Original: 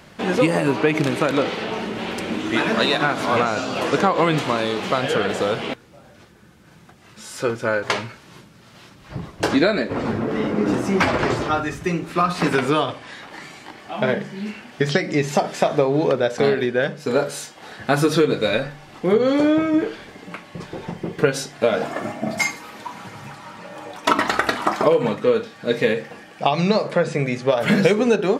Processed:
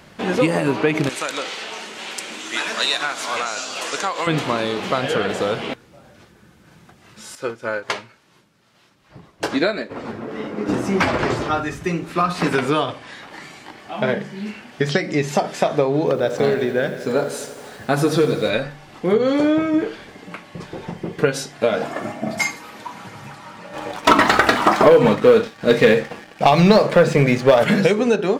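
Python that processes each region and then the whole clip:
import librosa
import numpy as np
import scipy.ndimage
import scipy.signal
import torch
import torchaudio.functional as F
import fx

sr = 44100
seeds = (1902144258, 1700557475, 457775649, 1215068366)

y = fx.chain(x, sr, fx.highpass(hz=1400.0, slope=6),
    fx.peak_eq(hz=7400.0, db=10.0, octaves=1.2), at=(1.09, 4.27))
y = fx.chain(y, sr, fx.low_shelf(hz=190.0, db=-7.5),
    fx.upward_expand(threshold_db=-35.0, expansion=1.5), at=(7.35, 10.69))
y = fx.chain(y, sr, fx.peak_eq(hz=2600.0, db=-3.0, octaves=2.2),
    fx.echo_crushed(ms=84, feedback_pct=80, bits=7, wet_db=-13), at=(15.99, 18.5))
y = fx.chain(y, sr, fx.high_shelf(hz=4900.0, db=-4.5),
    fx.leveller(passes=2), at=(23.73, 27.64))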